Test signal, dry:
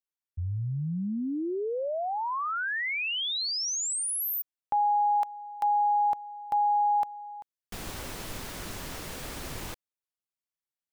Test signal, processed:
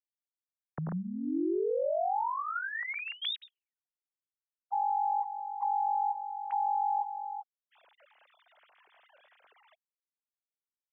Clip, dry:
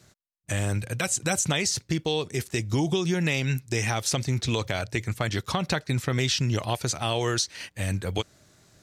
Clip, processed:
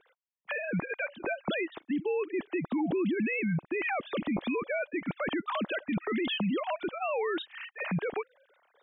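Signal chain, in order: sine-wave speech; dynamic EQ 330 Hz, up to +4 dB, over -45 dBFS, Q 4.4; limiter -24 dBFS

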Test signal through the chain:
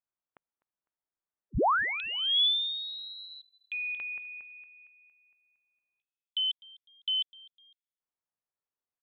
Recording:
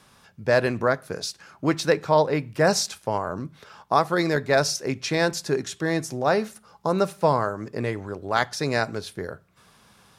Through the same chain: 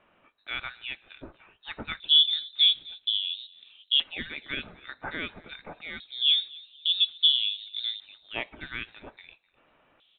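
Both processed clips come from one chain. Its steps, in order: LFO band-pass square 0.25 Hz 590–3100 Hz; frequency-shifting echo 0.252 s, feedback 37%, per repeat -77 Hz, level -23 dB; inverted band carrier 4000 Hz; gain +1.5 dB

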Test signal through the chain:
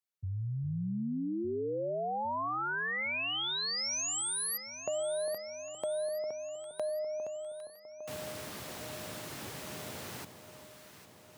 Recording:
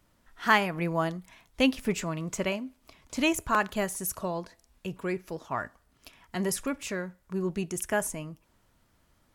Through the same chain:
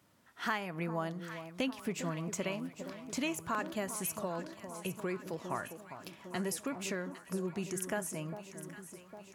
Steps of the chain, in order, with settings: HPF 95 Hz 24 dB/oct; compressor 3:1, threshold -35 dBFS; echo with dull and thin repeats by turns 0.403 s, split 1100 Hz, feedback 77%, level -9.5 dB

